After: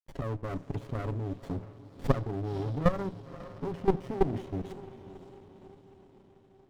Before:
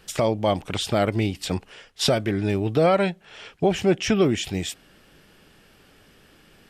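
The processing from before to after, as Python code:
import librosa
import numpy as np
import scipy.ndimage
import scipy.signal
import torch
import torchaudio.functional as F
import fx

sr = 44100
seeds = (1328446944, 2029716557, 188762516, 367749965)

y = fx.block_float(x, sr, bits=5)
y = fx.lowpass(y, sr, hz=2100.0, slope=6)
y = fx.spec_gate(y, sr, threshold_db=-15, keep='strong')
y = scipy.signal.sosfilt(scipy.signal.butter(4, 64.0, 'highpass', fs=sr, output='sos'), y)
y = fx.low_shelf(y, sr, hz=110.0, db=3.0)
y = fx.hum_notches(y, sr, base_hz=60, count=5)
y = y + 0.83 * np.pad(y, (int(7.3 * sr / 1000.0), 0))[:len(y)]
y = fx.level_steps(y, sr, step_db=14)
y = np.sign(y) * np.maximum(np.abs(y) - 10.0 ** (-51.0 / 20.0), 0.0)
y = fx.echo_diffused(y, sr, ms=543, feedback_pct=55, wet_db=-15.5)
y = fx.rev_schroeder(y, sr, rt60_s=0.49, comb_ms=31, drr_db=18.0)
y = fx.running_max(y, sr, window=33)
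y = y * librosa.db_to_amplitude(-3.5)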